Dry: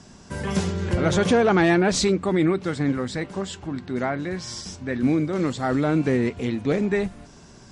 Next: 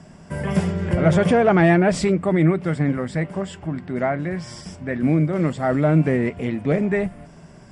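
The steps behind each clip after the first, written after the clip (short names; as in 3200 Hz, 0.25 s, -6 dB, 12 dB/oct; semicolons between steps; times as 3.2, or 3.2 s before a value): thirty-one-band EQ 160 Hz +10 dB, 630 Hz +8 dB, 2000 Hz +4 dB, 4000 Hz -12 dB, 6300 Hz -11 dB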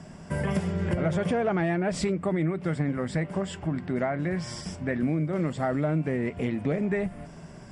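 compressor 5:1, threshold -24 dBFS, peak gain reduction 12 dB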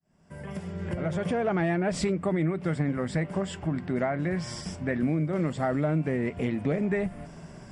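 opening faded in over 1.64 s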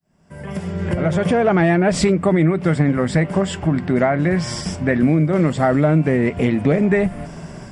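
AGC gain up to 6.5 dB; gain +4.5 dB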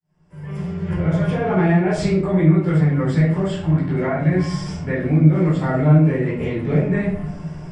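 reverb RT60 0.60 s, pre-delay 12 ms, DRR -8.5 dB; gain -15 dB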